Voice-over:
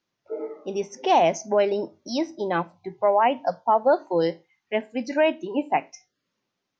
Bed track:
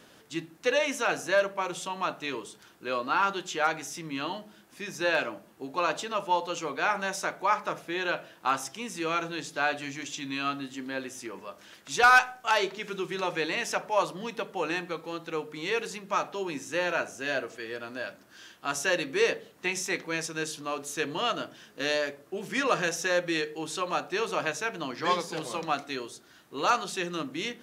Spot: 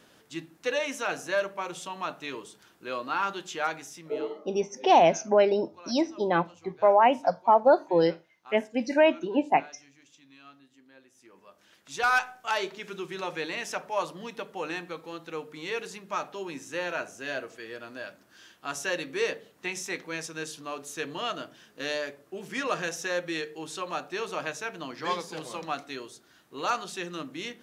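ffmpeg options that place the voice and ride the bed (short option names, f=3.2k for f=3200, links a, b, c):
-filter_complex "[0:a]adelay=3800,volume=0dB[a];[1:a]volume=15dB,afade=t=out:st=3.67:d=0.72:silence=0.11885,afade=t=in:st=11.13:d=1.27:silence=0.125893[b];[a][b]amix=inputs=2:normalize=0"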